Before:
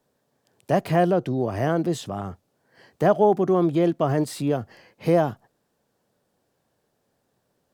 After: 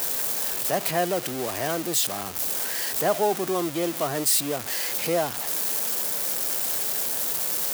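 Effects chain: jump at every zero crossing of -26.5 dBFS; RIAA curve recording; trim -3.5 dB

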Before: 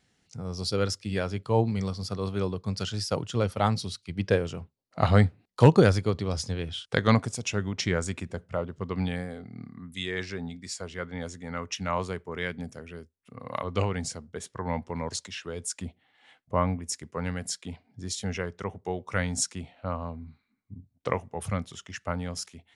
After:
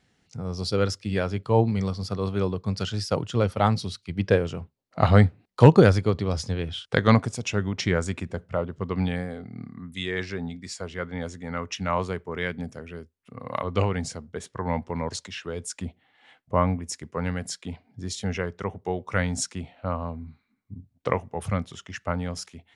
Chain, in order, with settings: treble shelf 5 kHz -7.5 dB; trim +3.5 dB

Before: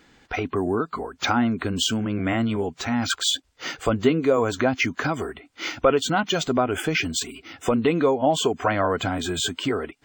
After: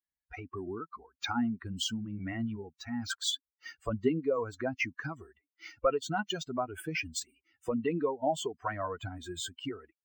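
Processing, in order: expander on every frequency bin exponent 2; trim -6.5 dB

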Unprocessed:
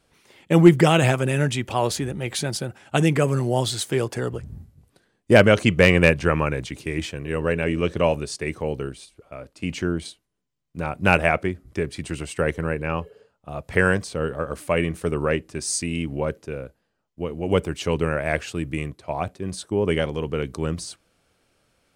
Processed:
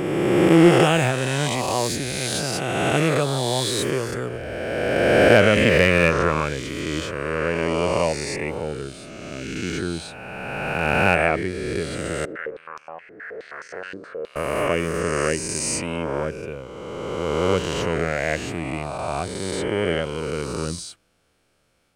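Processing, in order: reverse spectral sustain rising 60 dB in 2.56 s; 12.25–14.36 s: step-sequenced band-pass 9.5 Hz 310–5800 Hz; trim -4 dB

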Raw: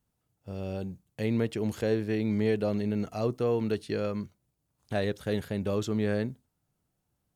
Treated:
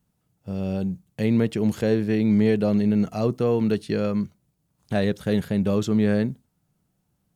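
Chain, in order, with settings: peaking EQ 180 Hz +8 dB 0.7 oct; trim +4.5 dB

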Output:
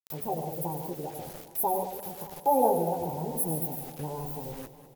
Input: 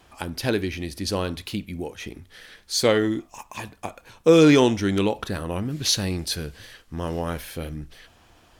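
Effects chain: inverse Chebyshev band-stop 670–4400 Hz, stop band 40 dB; resonant low shelf 270 Hz -13 dB, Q 1.5; comb 1.4 ms, depth 80%; on a send: loudspeakers at several distances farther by 60 m -9 dB, 89 m -9 dB; on the sum: chorus 2.5 Hz, delay 20 ms, depth 3 ms; bit crusher 9-bit; upward compressor, threshold -38 dBFS; speed mistake 45 rpm record played at 78 rpm; modulated delay 203 ms, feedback 70%, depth 90 cents, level -15 dB; trim +6.5 dB

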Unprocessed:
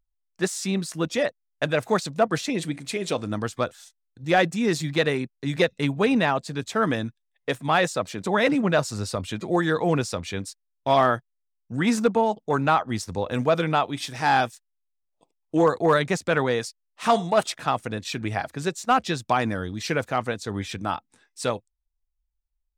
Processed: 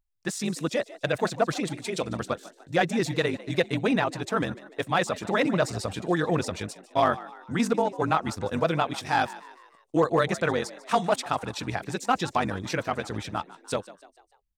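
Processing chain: granular stretch 0.64×, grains 42 ms; frequency-shifting echo 148 ms, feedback 49%, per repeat +77 Hz, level -18 dB; trim -1.5 dB

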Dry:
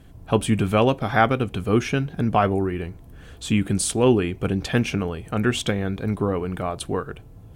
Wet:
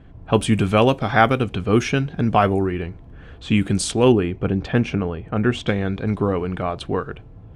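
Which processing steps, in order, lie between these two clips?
level-controlled noise filter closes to 2.1 kHz, open at -13.5 dBFS; treble shelf 2.9 kHz +3 dB, from 4.12 s -10.5 dB, from 5.68 s +3 dB; trim +2.5 dB

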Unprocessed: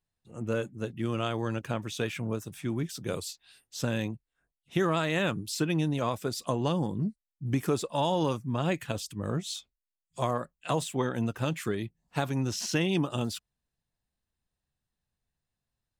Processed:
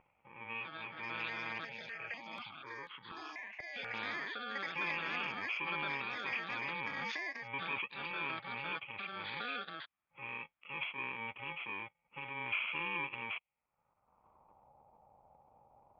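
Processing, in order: bit-reversed sample order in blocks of 64 samples; rippled Chebyshev low-pass 3.4 kHz, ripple 9 dB; peaking EQ 1.6 kHz -13 dB 0.21 oct; ever faster or slower copies 393 ms, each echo +6 st, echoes 2; transient shaper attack -3 dB, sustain +8 dB; band-pass sweep 2.2 kHz -> 790 Hz, 13.34–14.72 s; upward compressor, threshold -52 dBFS; level-controlled noise filter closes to 1.1 kHz, open at -45 dBFS; tilt EQ -2 dB/octave; 1.65–3.94 s: stepped phaser 4.1 Hz 310–2400 Hz; trim +10.5 dB

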